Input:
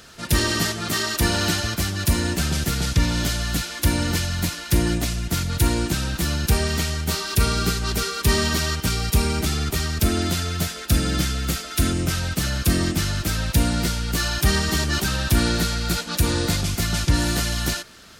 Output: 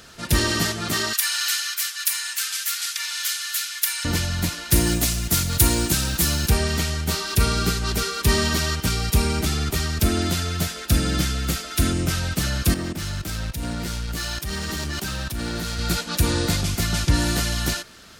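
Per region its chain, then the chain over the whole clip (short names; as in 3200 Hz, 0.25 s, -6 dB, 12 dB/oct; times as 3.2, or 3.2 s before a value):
1.13–4.05 HPF 1400 Hz 24 dB/oct + high shelf 8900 Hz +9 dB
4.72–6.48 high shelf 5600 Hz +11.5 dB + short-mantissa float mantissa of 2-bit
12.74–15.79 level quantiser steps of 13 dB + hard clip -23 dBFS + three-band expander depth 70%
whole clip: dry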